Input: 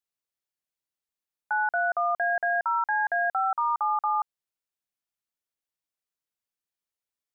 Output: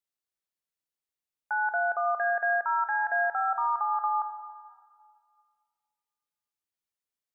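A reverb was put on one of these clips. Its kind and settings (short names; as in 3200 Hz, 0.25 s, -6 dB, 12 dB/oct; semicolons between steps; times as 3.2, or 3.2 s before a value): plate-style reverb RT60 2.1 s, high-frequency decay 0.85×, DRR 8.5 dB; gain -3 dB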